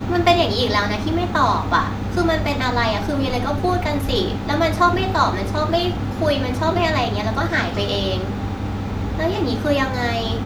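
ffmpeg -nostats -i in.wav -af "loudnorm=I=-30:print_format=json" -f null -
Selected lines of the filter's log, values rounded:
"input_i" : "-20.4",
"input_tp" : "-2.8",
"input_lra" : "2.9",
"input_thresh" : "-30.4",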